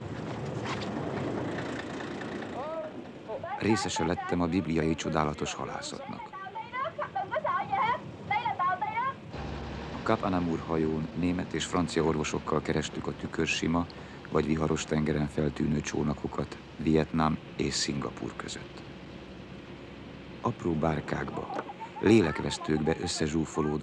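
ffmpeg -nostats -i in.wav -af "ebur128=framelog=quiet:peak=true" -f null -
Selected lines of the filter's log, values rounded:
Integrated loudness:
  I:         -31.0 LUFS
  Threshold: -41.3 LUFS
Loudness range:
  LRA:         5.7 LU
  Threshold: -51.3 LUFS
  LRA low:   -35.3 LUFS
  LRA high:  -29.7 LUFS
True peak:
  Peak:      -10.0 dBFS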